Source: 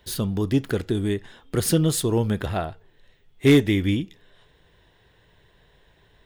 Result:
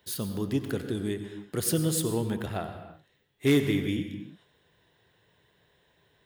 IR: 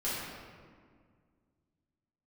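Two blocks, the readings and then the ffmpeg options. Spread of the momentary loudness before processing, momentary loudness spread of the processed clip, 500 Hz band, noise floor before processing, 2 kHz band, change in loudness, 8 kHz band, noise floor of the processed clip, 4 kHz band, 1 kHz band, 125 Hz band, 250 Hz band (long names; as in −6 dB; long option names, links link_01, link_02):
12 LU, 14 LU, −6.5 dB, −60 dBFS, −6.0 dB, −6.5 dB, −3.0 dB, −68 dBFS, −5.5 dB, −6.5 dB, −7.5 dB, −6.0 dB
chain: -filter_complex "[0:a]highpass=100,highshelf=frequency=9100:gain=7.5,asplit=2[link_01][link_02];[1:a]atrim=start_sample=2205,afade=type=out:start_time=0.29:duration=0.01,atrim=end_sample=13230,adelay=90[link_03];[link_02][link_03]afir=irnorm=-1:irlink=0,volume=-14dB[link_04];[link_01][link_04]amix=inputs=2:normalize=0,volume=-7dB"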